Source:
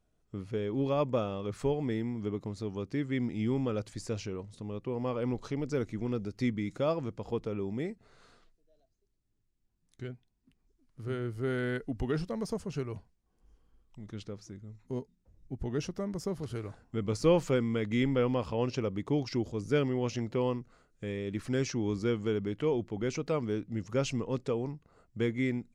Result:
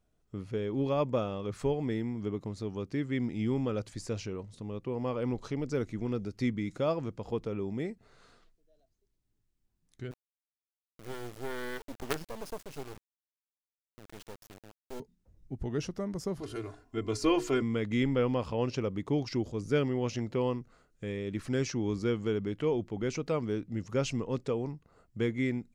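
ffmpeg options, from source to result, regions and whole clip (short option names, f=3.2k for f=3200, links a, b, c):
-filter_complex "[0:a]asettb=1/sr,asplit=3[a][b][c];[a]atrim=end=10.114[d];[b]atrim=start=10.11:end=15,asetpts=PTS-STARTPTS,afade=t=in:d=0.004:c=qsin,afade=t=out:st=4.886:d=0.004:c=qsin,bass=f=250:g=-8,treble=f=4k:g=0,acrusher=bits=5:dc=4:mix=0:aa=0.000001[e];[c]atrim=start=14.996[f];[d][e]acrossfade=d=0.004:c1=hsin:c2=qsin[g];[g][f]acrossfade=d=0.004:c1=qsin:c2=hsin,asettb=1/sr,asplit=3[h][i][j];[h]atrim=end=16.404[k];[i]atrim=start=16.4:end=17.62,asetpts=PTS-STARTPTS,afade=t=in:d=0.004:c=qsin,afade=t=out:st=1.216:d=0.004:c=qsin,lowshelf=f=190:g=-5,bandreject=f=60:t=h:w=6,bandreject=f=120:t=h:w=6,bandreject=f=180:t=h:w=6,bandreject=f=240:t=h:w=6,bandreject=f=300:t=h:w=6,bandreject=f=360:t=h:w=6,bandreject=f=420:t=h:w=6,bandreject=f=480:t=h:w=6,aecho=1:1:2.9:0.88,atrim=end_sample=53802[l];[j]atrim=start=17.616[m];[k][l]acrossfade=d=0.004:c1=hsin:c2=qsin[n];[n][m]acrossfade=d=0.004:c1=qsin:c2=hsin"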